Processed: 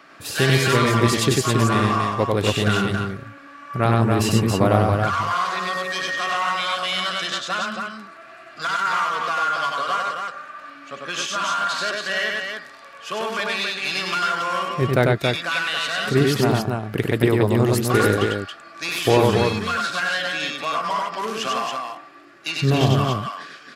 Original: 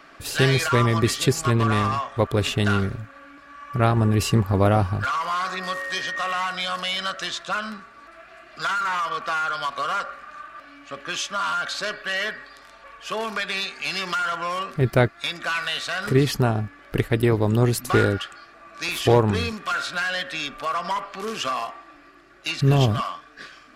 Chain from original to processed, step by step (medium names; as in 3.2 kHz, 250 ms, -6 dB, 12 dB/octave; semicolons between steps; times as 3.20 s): high-pass 110 Hz; loudspeakers at several distances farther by 33 m -2 dB, 95 m -4 dB